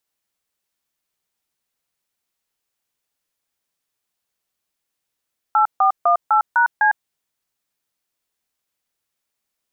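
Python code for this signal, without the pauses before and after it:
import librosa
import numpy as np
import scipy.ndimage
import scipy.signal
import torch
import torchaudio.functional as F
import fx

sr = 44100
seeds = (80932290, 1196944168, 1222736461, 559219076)

y = fx.dtmf(sr, digits='8418#C', tone_ms=104, gap_ms=148, level_db=-14.5)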